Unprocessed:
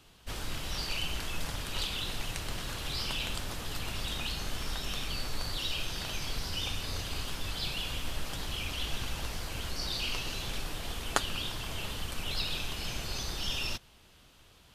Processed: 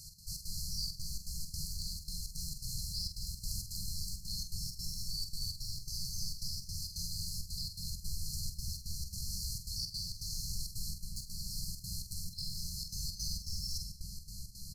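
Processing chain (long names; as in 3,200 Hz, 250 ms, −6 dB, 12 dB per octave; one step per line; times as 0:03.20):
stylus tracing distortion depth 0.077 ms
tilt shelving filter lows −4.5 dB
reversed playback
downward compressor 10 to 1, threshold −45 dBFS, peak gain reduction 24.5 dB
reversed playback
convolution reverb RT60 0.35 s, pre-delay 48 ms, DRR 4 dB
brickwall limiter −38 dBFS, peak gain reduction 9 dB
on a send: feedback echo with a low-pass in the loop 224 ms, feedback 79%, level −4 dB
on the sum: brick-wall band-stop 200–4,100 Hz
gate pattern "x.xx.xxxxx.x" 166 BPM −12 dB
double-tracking delay 46 ms −7.5 dB
level +11.5 dB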